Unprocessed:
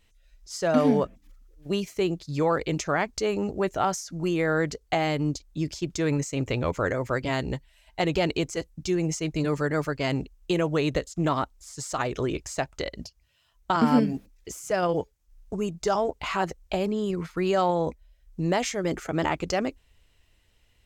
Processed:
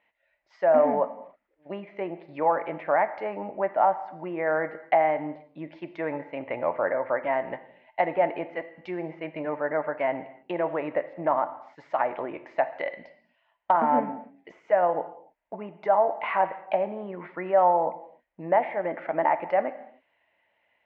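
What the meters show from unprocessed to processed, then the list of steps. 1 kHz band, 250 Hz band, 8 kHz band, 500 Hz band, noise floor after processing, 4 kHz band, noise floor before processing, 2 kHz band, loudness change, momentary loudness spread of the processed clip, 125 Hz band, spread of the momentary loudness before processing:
+5.0 dB, -8.5 dB, under -40 dB, +2.0 dB, -72 dBFS, under -15 dB, -65 dBFS, -1.5 dB, +0.5 dB, 16 LU, -15.5 dB, 9 LU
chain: low-pass that closes with the level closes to 1.6 kHz, closed at -23 dBFS; cabinet simulation 400–2400 Hz, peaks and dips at 410 Hz -9 dB, 610 Hz +8 dB, 870 Hz +8 dB, 1.3 kHz -5 dB, 2 kHz +6 dB; gated-style reverb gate 330 ms falling, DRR 10.5 dB

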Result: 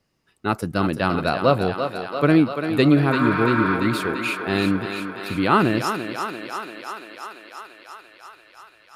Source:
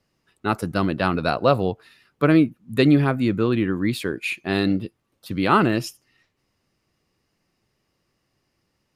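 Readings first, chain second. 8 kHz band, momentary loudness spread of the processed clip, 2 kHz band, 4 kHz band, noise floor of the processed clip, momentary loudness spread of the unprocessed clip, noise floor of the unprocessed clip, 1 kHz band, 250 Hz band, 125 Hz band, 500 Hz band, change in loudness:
+1.5 dB, 17 LU, +3.5 dB, +1.5 dB, -56 dBFS, 10 LU, -73 dBFS, +2.5 dB, +0.5 dB, 0.0 dB, +1.0 dB, 0.0 dB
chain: spectral replace 3.14–3.73 s, 840–6900 Hz before; thinning echo 341 ms, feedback 77%, high-pass 280 Hz, level -7 dB

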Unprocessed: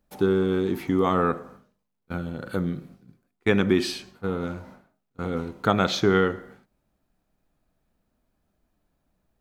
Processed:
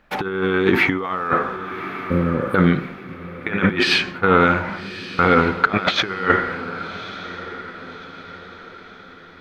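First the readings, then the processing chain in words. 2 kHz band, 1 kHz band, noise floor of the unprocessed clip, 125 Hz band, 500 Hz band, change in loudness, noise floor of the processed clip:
+13.0 dB, +9.5 dB, -77 dBFS, +5.5 dB, +3.5 dB, +6.0 dB, -43 dBFS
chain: bass shelf 470 Hz -10 dB; compressor with a negative ratio -33 dBFS, ratio -0.5; spectral replace 1.61–2.53 s, 600–8200 Hz before; FFT filter 700 Hz 0 dB, 1.6 kHz +7 dB, 2.3 kHz +6 dB, 8.7 kHz -19 dB; on a send: echo that smears into a reverb 1173 ms, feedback 45%, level -14 dB; on the sum: loudness maximiser +16.5 dB; trim -1 dB

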